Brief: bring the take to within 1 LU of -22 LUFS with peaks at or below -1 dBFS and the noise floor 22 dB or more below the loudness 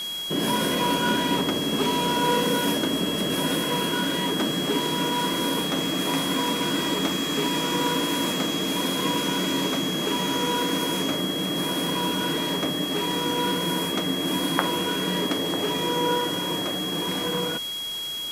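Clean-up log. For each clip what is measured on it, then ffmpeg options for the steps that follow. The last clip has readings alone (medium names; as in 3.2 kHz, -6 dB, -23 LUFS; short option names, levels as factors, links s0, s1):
steady tone 3.3 kHz; tone level -29 dBFS; noise floor -31 dBFS; noise floor target -46 dBFS; loudness -24.0 LUFS; peak level -2.5 dBFS; loudness target -22.0 LUFS
-> -af "bandreject=f=3300:w=30"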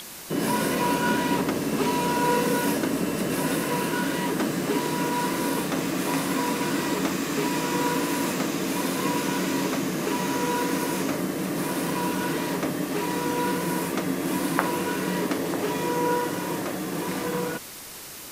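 steady tone not found; noise floor -40 dBFS; noise floor target -48 dBFS
-> -af "afftdn=nr=8:nf=-40"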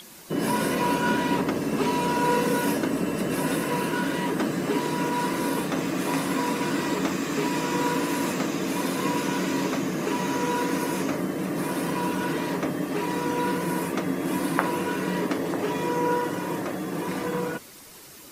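noise floor -46 dBFS; noise floor target -49 dBFS
-> -af "afftdn=nr=6:nf=-46"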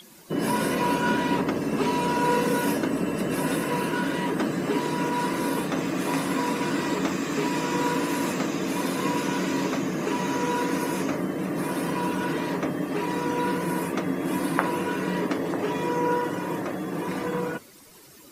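noise floor -49 dBFS; loudness -26.5 LUFS; peak level -3.0 dBFS; loudness target -22.0 LUFS
-> -af "volume=1.68,alimiter=limit=0.891:level=0:latency=1"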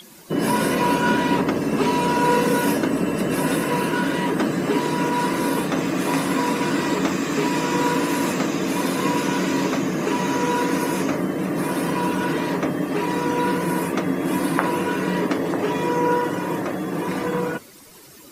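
loudness -22.0 LUFS; peak level -1.0 dBFS; noise floor -45 dBFS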